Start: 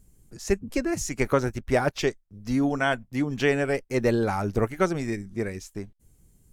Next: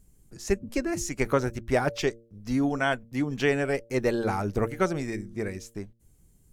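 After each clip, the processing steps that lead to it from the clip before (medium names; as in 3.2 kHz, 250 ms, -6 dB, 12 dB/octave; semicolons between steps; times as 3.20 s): de-hum 115.2 Hz, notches 5; trim -1.5 dB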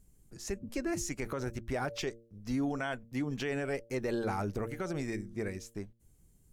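peak limiter -21 dBFS, peak gain reduction 11.5 dB; trim -4 dB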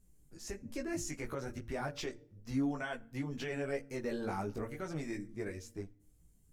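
FDN reverb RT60 0.59 s, low-frequency decay 1.6×, high-frequency decay 0.75×, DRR 18 dB; chorus voices 4, 0.54 Hz, delay 17 ms, depth 4.9 ms; trim -1 dB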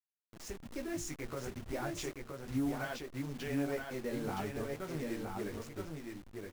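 send-on-delta sampling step -45 dBFS; delay 970 ms -4 dB; trim -1 dB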